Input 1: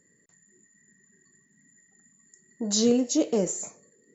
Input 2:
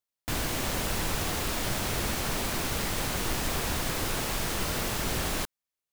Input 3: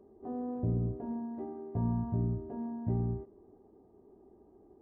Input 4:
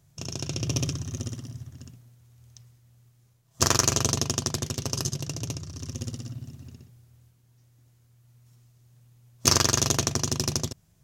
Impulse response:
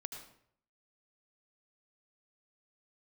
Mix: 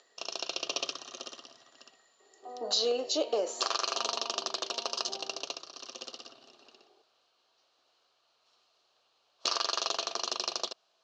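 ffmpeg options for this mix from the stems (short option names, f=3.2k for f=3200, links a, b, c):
-filter_complex "[0:a]volume=2dB[a];[2:a]adelay=2200,volume=-2dB[b];[3:a]alimiter=limit=-11.5dB:level=0:latency=1:release=52,volume=0dB[c];[a][b][c]amix=inputs=3:normalize=0,acompressor=mode=upward:threshold=-54dB:ratio=2.5,highpass=f=450:w=0.5412,highpass=f=450:w=1.3066,equalizer=f=700:t=q:w=4:g=5,equalizer=f=1.2k:t=q:w=4:g=7,equalizer=f=2k:t=q:w=4:g=-8,equalizer=f=2.9k:t=q:w=4:g=6,equalizer=f=4.2k:t=q:w=4:g=9,lowpass=f=5.2k:w=0.5412,lowpass=f=5.2k:w=1.3066,acompressor=threshold=-26dB:ratio=4"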